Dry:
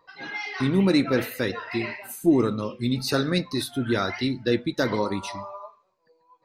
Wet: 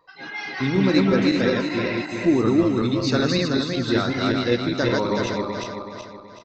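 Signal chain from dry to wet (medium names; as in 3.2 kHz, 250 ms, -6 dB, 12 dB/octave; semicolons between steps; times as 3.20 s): backward echo that repeats 188 ms, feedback 64%, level -0.5 dB; resampled via 16 kHz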